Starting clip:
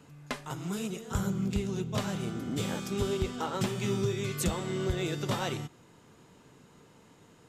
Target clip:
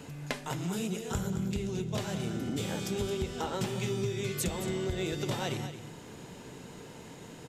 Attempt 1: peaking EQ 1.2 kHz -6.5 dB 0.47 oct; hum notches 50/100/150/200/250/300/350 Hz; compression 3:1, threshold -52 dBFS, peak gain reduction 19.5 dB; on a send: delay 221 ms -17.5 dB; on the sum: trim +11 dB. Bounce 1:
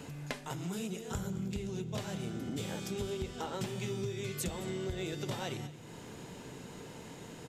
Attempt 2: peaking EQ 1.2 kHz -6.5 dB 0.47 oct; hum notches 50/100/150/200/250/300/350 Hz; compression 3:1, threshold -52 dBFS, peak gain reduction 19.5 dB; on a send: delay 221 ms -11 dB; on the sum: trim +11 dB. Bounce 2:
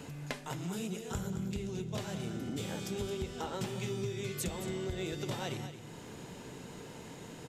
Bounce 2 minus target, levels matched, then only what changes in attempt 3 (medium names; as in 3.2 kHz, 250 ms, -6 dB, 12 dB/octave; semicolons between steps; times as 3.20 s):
compression: peak gain reduction +4.5 dB
change: compression 3:1, threshold -45.5 dBFS, peak gain reduction 15.5 dB